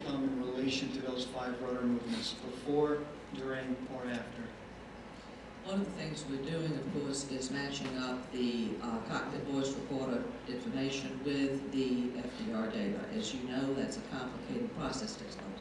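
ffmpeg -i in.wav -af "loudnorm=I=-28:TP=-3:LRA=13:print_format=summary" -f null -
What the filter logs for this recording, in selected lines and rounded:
Input Integrated:    -37.4 LUFS
Input True Peak:     -20.3 dBTP
Input LRA:             2.3 LU
Input Threshold:     -47.6 LUFS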